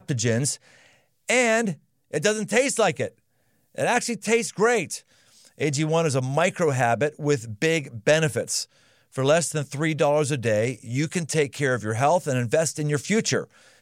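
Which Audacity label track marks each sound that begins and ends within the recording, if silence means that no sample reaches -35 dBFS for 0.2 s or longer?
1.290000	1.740000	sound
2.130000	3.080000	sound
3.780000	4.980000	sound
5.470000	8.640000	sound
9.160000	13.440000	sound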